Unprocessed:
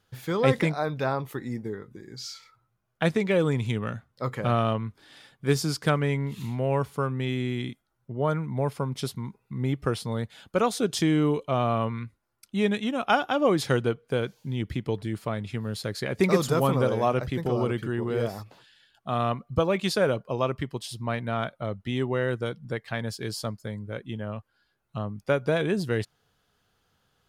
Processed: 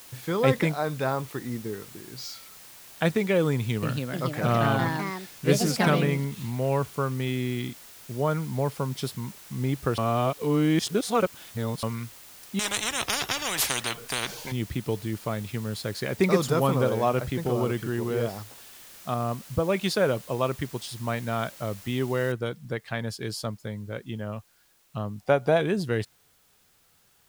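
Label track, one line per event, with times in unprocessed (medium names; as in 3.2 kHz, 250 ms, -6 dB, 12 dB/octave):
1.110000	2.320000	careless resampling rate divided by 2×, down filtered, up hold
3.520000	6.400000	ever faster or slower copies 306 ms, each echo +3 st, echoes 3
9.980000	11.830000	reverse
12.590000	14.520000	spectrum-flattening compressor 10:1
19.140000	19.690000	tape spacing loss at 10 kHz 44 dB
22.320000	22.320000	noise floor step -48 dB -64 dB
25.190000	25.600000	peaking EQ 750 Hz +12.5 dB 0.41 oct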